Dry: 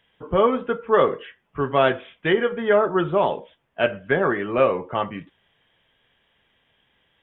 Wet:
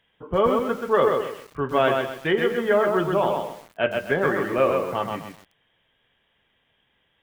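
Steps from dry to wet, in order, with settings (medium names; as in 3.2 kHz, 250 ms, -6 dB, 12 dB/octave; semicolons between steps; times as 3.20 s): bit-crushed delay 129 ms, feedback 35%, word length 7-bit, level -4 dB; trim -2.5 dB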